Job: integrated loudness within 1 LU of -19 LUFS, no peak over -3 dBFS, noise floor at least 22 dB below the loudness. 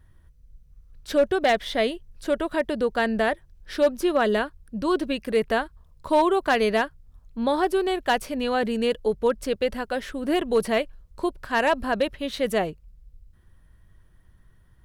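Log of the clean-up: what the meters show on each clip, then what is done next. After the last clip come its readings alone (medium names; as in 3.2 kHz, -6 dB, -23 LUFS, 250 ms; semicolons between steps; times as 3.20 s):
clipped samples 0.3%; clipping level -13.0 dBFS; loudness -24.5 LUFS; peak level -13.0 dBFS; loudness target -19.0 LUFS
-> clip repair -13 dBFS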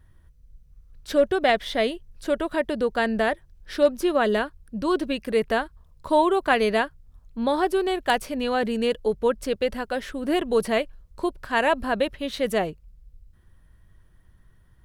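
clipped samples 0.0%; loudness -24.5 LUFS; peak level -5.5 dBFS; loudness target -19.0 LUFS
-> trim +5.5 dB; peak limiter -3 dBFS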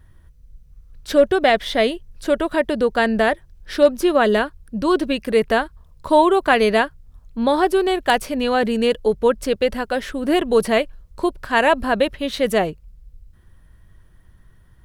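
loudness -19.0 LUFS; peak level -3.0 dBFS; noise floor -51 dBFS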